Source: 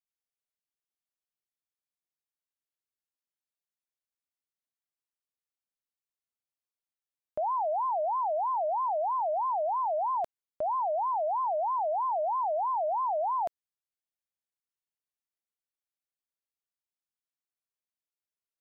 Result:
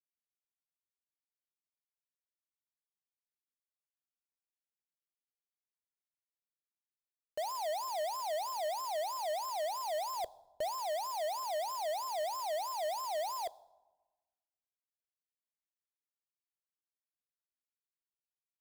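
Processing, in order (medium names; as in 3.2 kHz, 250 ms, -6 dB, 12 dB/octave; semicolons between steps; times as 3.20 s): peak limiter -36 dBFS, peak gain reduction 10 dB; bit crusher 7-bit; graphic EQ 125/250/500/1000 Hz -6/-9/+11/-5 dB; reverberation RT60 1.2 s, pre-delay 6 ms, DRR 18.5 dB; saturation -34 dBFS, distortion -15 dB; 10.18–10.70 s: bass shelf 230 Hz +11 dB; trim +2.5 dB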